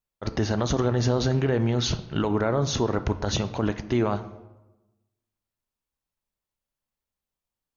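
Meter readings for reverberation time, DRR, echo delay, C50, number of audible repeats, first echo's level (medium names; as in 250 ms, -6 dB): 1.1 s, 11.5 dB, no echo, 14.5 dB, no echo, no echo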